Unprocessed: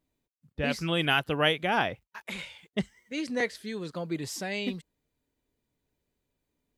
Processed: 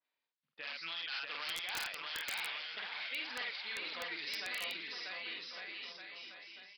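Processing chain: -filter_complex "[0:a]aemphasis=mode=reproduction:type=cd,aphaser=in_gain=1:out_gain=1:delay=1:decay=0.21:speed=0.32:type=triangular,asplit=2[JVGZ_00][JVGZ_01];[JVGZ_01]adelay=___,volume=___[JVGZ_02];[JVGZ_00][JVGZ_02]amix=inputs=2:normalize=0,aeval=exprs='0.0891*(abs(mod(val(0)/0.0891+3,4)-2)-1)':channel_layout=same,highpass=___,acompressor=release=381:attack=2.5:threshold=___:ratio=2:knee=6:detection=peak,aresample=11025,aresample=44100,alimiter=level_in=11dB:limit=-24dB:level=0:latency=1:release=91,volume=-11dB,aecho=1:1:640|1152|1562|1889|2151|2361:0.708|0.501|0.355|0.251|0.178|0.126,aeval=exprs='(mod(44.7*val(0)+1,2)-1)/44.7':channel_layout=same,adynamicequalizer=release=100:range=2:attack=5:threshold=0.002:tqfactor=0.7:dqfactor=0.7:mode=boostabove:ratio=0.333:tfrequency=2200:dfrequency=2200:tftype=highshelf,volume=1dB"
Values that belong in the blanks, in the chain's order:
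48, -2dB, 1.4k, -36dB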